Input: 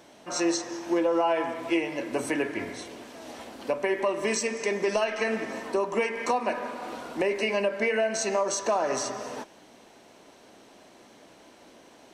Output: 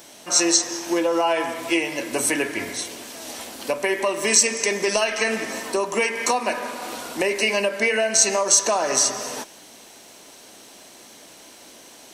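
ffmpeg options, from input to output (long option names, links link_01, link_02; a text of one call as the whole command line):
ffmpeg -i in.wav -af "crystalizer=i=4.5:c=0,volume=2.5dB" out.wav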